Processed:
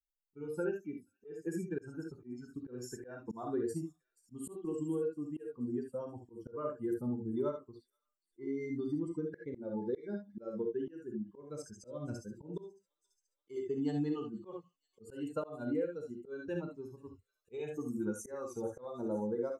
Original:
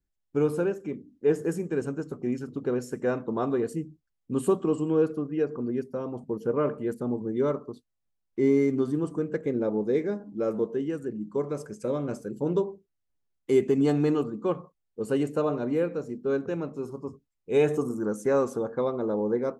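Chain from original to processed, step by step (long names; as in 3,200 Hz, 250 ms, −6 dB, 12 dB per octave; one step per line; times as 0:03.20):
spectral dynamics exaggerated over time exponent 2
downward compressor 12 to 1, threshold −34 dBFS, peak gain reduction 16.5 dB
delay with a high-pass on its return 480 ms, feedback 62%, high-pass 4,900 Hz, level −18 dB
reverb whose tail is shaped and stops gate 90 ms rising, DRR 3.5 dB
volume swells 236 ms
level +2 dB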